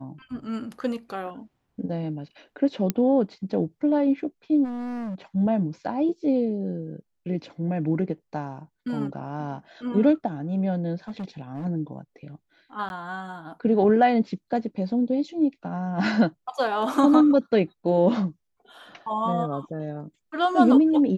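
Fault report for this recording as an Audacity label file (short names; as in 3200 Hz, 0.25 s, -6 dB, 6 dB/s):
2.900000	2.900000	pop -10 dBFS
4.640000	5.150000	clipped -29.5 dBFS
11.080000	11.660000	clipped -29 dBFS
12.890000	12.900000	gap 11 ms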